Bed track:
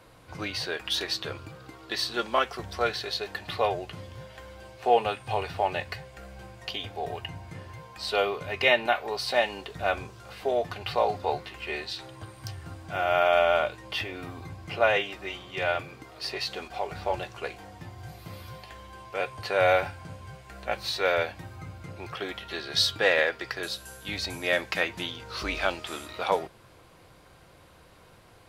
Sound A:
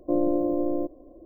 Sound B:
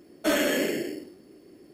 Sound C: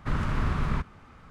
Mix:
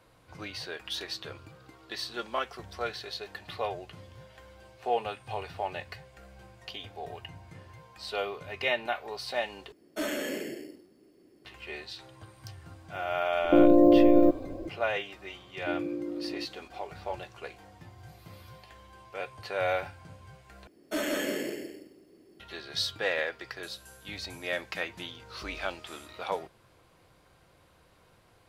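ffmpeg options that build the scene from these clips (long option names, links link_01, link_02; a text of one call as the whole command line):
ffmpeg -i bed.wav -i cue0.wav -i cue1.wav -filter_complex "[2:a]asplit=2[link_01][link_02];[1:a]asplit=2[link_03][link_04];[0:a]volume=-7dB[link_05];[link_03]alimiter=level_in=19.5dB:limit=-1dB:release=50:level=0:latency=1[link_06];[link_04]asuperpass=centerf=240:order=12:qfactor=0.63[link_07];[link_02]aecho=1:1:169|338|507:0.596|0.0893|0.0134[link_08];[link_05]asplit=3[link_09][link_10][link_11];[link_09]atrim=end=9.724[link_12];[link_01]atrim=end=1.73,asetpts=PTS-STARTPTS,volume=-8.5dB[link_13];[link_10]atrim=start=11.446:end=20.674[link_14];[link_08]atrim=end=1.73,asetpts=PTS-STARTPTS,volume=-7.5dB[link_15];[link_11]atrim=start=22.396[link_16];[link_06]atrim=end=1.25,asetpts=PTS-STARTPTS,volume=-9.5dB,afade=type=in:duration=0.004:curve=hsin,afade=type=out:start_time=1.246:duration=0.004:curve=hsin,adelay=13440[link_17];[link_07]atrim=end=1.25,asetpts=PTS-STARTPTS,volume=-9dB,afade=type=in:duration=0.004:curve=hsin,afade=type=out:start_time=1.246:duration=0.004:curve=hsin,adelay=15580[link_18];[link_12][link_13]acrossfade=duration=0.004:curve1=hsin:curve2=hsin[link_19];[link_19][link_14]acrossfade=duration=0.004:curve1=hsin:curve2=hsin[link_20];[link_20][link_15]acrossfade=duration=0.004:curve1=hsin:curve2=hsin[link_21];[link_21][link_16]acrossfade=duration=0.004:curve1=hsin:curve2=hsin[link_22];[link_22][link_17][link_18]amix=inputs=3:normalize=0" out.wav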